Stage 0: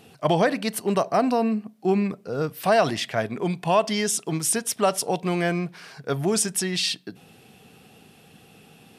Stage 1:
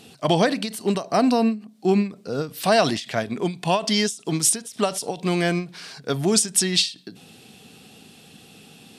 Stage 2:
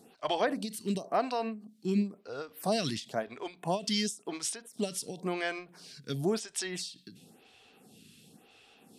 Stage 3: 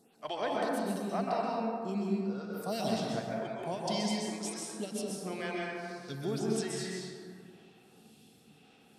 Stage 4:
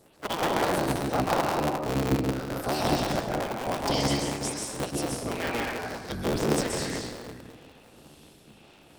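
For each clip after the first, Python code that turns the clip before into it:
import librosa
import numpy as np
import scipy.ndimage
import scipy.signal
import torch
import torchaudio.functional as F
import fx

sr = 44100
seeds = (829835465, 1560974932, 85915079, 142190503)

y1 = fx.graphic_eq(x, sr, hz=(250, 4000, 8000), db=(5, 8, 7))
y1 = fx.end_taper(y1, sr, db_per_s=180.0)
y2 = fx.quant_float(y1, sr, bits=8)
y2 = fx.stagger_phaser(y2, sr, hz=0.96)
y2 = F.gain(torch.from_numpy(y2), -7.0).numpy()
y3 = fx.rev_plate(y2, sr, seeds[0], rt60_s=2.3, hf_ratio=0.35, predelay_ms=115, drr_db=-4.0)
y3 = F.gain(torch.from_numpy(y3), -7.0).numpy()
y4 = fx.cycle_switch(y3, sr, every=3, mode='inverted')
y4 = F.gain(torch.from_numpy(y4), 6.5).numpy()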